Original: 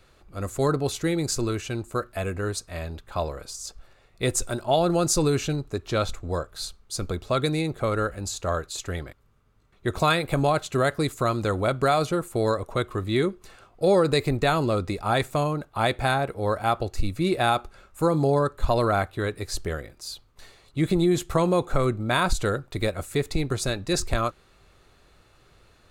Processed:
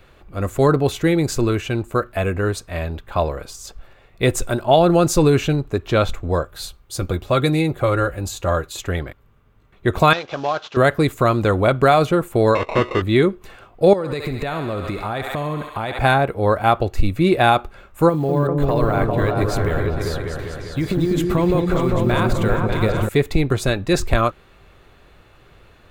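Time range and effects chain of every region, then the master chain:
6.45–8.82 s: treble shelf 7.4 kHz +6 dB + comb of notches 220 Hz
10.13–10.77 s: CVSD coder 32 kbps + high-pass 1.2 kHz 6 dB/octave + peaking EQ 2.1 kHz -9 dB 0.6 oct
12.55–13.02 s: sample-rate reducer 1.6 kHz + overdrive pedal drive 16 dB, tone 7.3 kHz, clips at -14.5 dBFS + distance through air 110 m
13.93–15.99 s: thinning echo 68 ms, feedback 74%, high-pass 640 Hz, level -8.5 dB + compression 12:1, threshold -28 dBFS
18.09–23.09 s: compression 12:1, threshold -24 dBFS + short-mantissa float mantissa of 4-bit + delay with an opening low-pass 198 ms, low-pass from 400 Hz, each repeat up 2 oct, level 0 dB
whole clip: high-order bell 6.8 kHz -8.5 dB; band-stop 1.3 kHz, Q 23; trim +8 dB

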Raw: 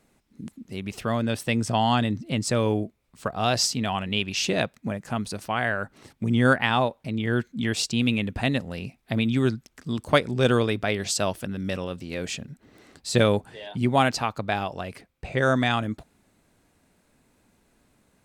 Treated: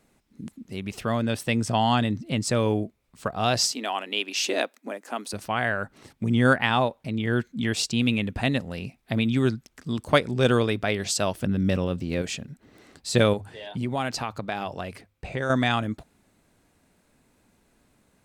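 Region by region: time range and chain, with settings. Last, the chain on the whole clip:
3.72–5.33 s: Chebyshev high-pass 270 Hz, order 4 + treble shelf 9.5 kHz +7 dB + tape noise reduction on one side only decoder only
11.39–12.22 s: median filter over 3 samples + bass shelf 430 Hz +8.5 dB
13.33–15.50 s: hum notches 50/100 Hz + compression 3:1, threshold -25 dBFS
whole clip: none

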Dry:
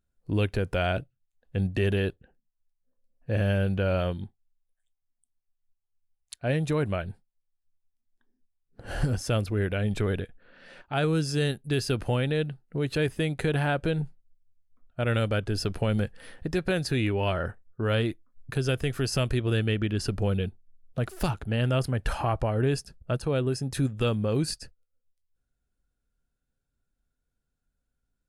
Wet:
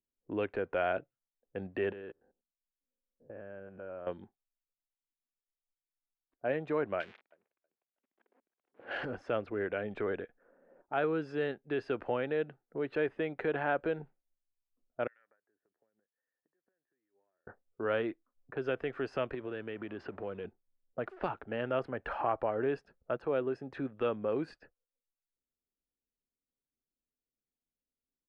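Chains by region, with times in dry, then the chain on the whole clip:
1.92–4.07 s: spectrogram pixelated in time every 100 ms + compression 12:1, threshold -33 dBFS
7.00–9.05 s: zero-crossing glitches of -27.5 dBFS + frequency weighting D + thinning echo 320 ms, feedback 32%, high-pass 550 Hz, level -17 dB
15.07–17.47 s: band-pass filter 1.8 kHz, Q 8.4 + compression 12:1, threshold -57 dBFS
19.34–20.45 s: companding laws mixed up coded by mu + high-pass 48 Hz 24 dB/octave + compression 4:1, threshold -28 dBFS
whole clip: low-pass 3.8 kHz 12 dB/octave; level-controlled noise filter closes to 330 Hz, open at -26.5 dBFS; three-band isolator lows -22 dB, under 280 Hz, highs -21 dB, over 2.3 kHz; trim -2 dB

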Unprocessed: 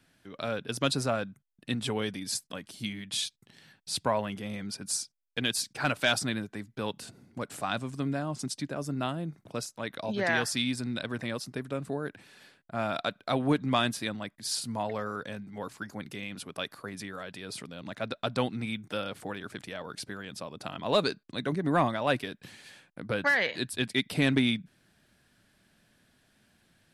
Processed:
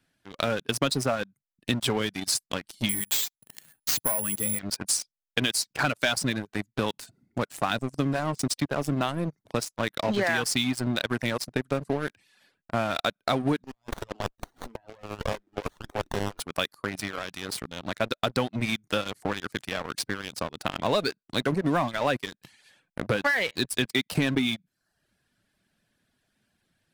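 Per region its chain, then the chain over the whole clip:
2.89–4.59 s: low-pass 11 kHz 24 dB/octave + careless resampling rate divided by 4×, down none, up zero stuff
13.64–16.40 s: high-pass 360 Hz 24 dB/octave + compressor with a negative ratio -40 dBFS, ratio -0.5 + sliding maximum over 17 samples
whole clip: reverb removal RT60 0.62 s; waveshaping leveller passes 3; compression, threshold -22 dBFS

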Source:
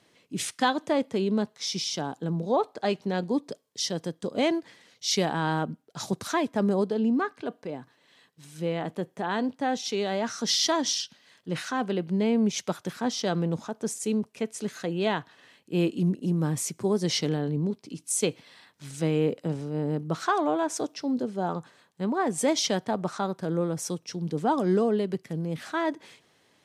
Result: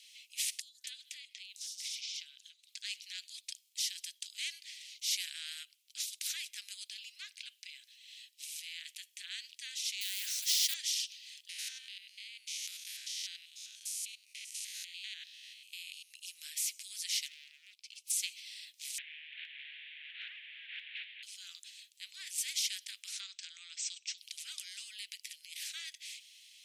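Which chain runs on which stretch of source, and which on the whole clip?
0.60–2.69 s: compression 8:1, threshold -35 dBFS + three bands offset in time highs, lows, mids 140/240 ms, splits 670/5700 Hz
10.01–10.74 s: tilt EQ +2 dB/octave + short-mantissa float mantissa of 2-bit
11.49–16.11 s: spectrogram pixelated in time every 100 ms + compression 1.5:1, threshold -37 dBFS + band-stop 7.6 kHz
17.28–18.10 s: overload inside the chain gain 36 dB + treble shelf 2.6 kHz -11.5 dB
18.98–21.23 s: one-bit delta coder 16 kbps, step -33.5 dBFS + compression 4:1, threshold -35 dBFS + resonant high-pass 1.7 kHz, resonance Q 3.9
23.20–24.18 s: brick-wall FIR low-pass 8.4 kHz + peaking EQ 940 Hz +8.5 dB 1.2 oct
whole clip: steep high-pass 2.4 kHz 48 dB/octave; spectrum-flattening compressor 2:1; trim -6.5 dB

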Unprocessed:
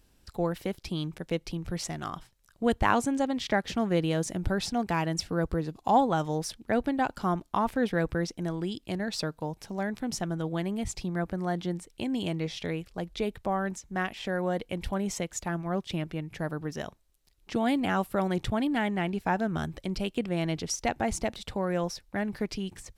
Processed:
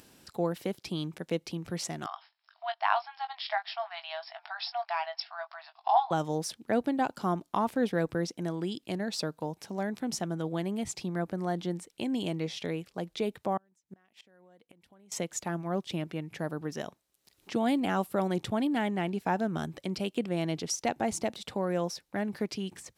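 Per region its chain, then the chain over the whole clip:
2.06–6.11 s: brick-wall FIR band-pass 630–5500 Hz + doubling 20 ms -9 dB
13.57–15.12 s: treble shelf 5.4 kHz +3 dB + compression 5:1, threshold -30 dBFS + inverted gate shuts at -31 dBFS, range -32 dB
whole clip: high-pass 160 Hz 12 dB/octave; dynamic bell 1.8 kHz, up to -4 dB, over -42 dBFS, Q 0.86; upward compressor, threshold -48 dBFS

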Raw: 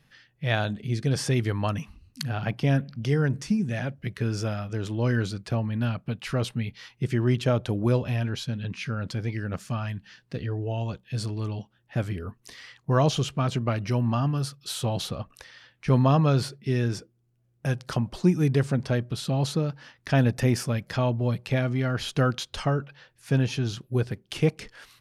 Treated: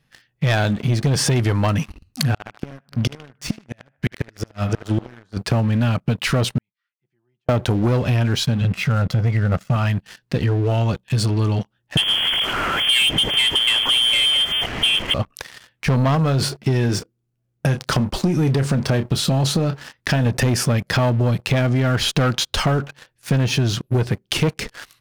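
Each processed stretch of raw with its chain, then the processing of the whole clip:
2.32–5.37 s: inverted gate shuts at -20 dBFS, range -27 dB + band-passed feedback delay 76 ms, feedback 72%, band-pass 1.2 kHz, level -9 dB
6.58–7.49 s: auto-wah 750–1700 Hz, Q 6.2, down, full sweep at -23.5 dBFS + amplifier tone stack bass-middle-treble 6-0-2 + comb 5.8 ms, depth 48%
8.61–9.76 s: low-pass 1.9 kHz 6 dB/octave + comb 1.5 ms, depth 69%
11.97–15.14 s: one-bit delta coder 64 kbps, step -28.5 dBFS + frequency inversion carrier 3.3 kHz
16.15–20.26 s: doubling 30 ms -13 dB + compression 3:1, threshold -22 dBFS
whole clip: waveshaping leveller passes 3; compression, threshold -19 dBFS; trim +3.5 dB

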